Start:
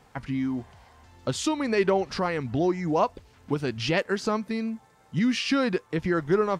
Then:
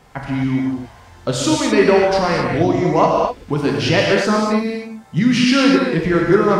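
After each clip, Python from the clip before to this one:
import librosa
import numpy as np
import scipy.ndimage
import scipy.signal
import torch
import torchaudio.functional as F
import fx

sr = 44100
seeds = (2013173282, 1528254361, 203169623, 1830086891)

y = fx.rev_gated(x, sr, seeds[0], gate_ms=280, shape='flat', drr_db=-2.5)
y = y * librosa.db_to_amplitude(6.5)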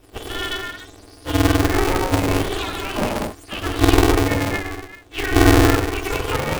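y = fx.octave_mirror(x, sr, pivot_hz=650.0)
y = fx.peak_eq(y, sr, hz=970.0, db=-15.0, octaves=2.7)
y = y * np.sign(np.sin(2.0 * np.pi * 190.0 * np.arange(len(y)) / sr))
y = y * librosa.db_to_amplitude(3.5)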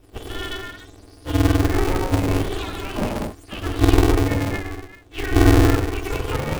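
y = fx.low_shelf(x, sr, hz=360.0, db=7.0)
y = y * librosa.db_to_amplitude(-5.5)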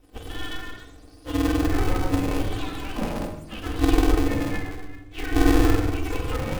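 y = fx.room_shoebox(x, sr, seeds[1], volume_m3=3300.0, walls='furnished', distance_m=2.0)
y = y * librosa.db_to_amplitude(-5.5)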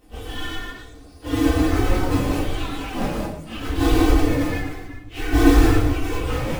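y = fx.phase_scramble(x, sr, seeds[2], window_ms=100)
y = y * librosa.db_to_amplitude(3.5)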